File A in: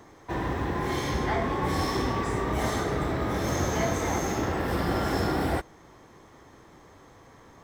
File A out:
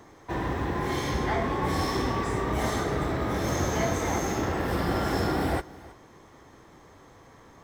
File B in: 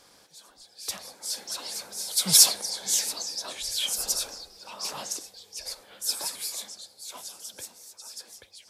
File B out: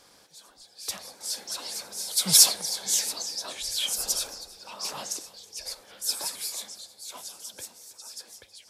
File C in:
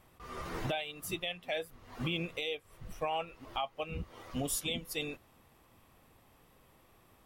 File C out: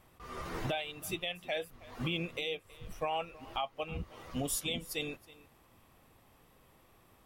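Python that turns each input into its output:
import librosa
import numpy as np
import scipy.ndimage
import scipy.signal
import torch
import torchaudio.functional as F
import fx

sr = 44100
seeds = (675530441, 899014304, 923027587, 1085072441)

y = x + 10.0 ** (-20.5 / 20.0) * np.pad(x, (int(321 * sr / 1000.0), 0))[:len(x)]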